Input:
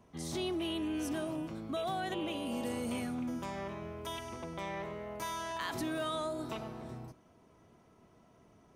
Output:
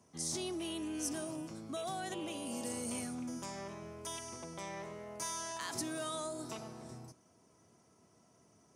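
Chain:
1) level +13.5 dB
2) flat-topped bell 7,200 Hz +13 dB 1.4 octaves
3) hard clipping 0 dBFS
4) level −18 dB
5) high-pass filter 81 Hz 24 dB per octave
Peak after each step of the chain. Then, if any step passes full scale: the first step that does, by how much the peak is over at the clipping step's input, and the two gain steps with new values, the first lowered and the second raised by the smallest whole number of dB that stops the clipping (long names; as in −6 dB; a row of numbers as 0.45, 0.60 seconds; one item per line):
−12.5, −4.5, −4.5, −22.5, −23.0 dBFS
no step passes full scale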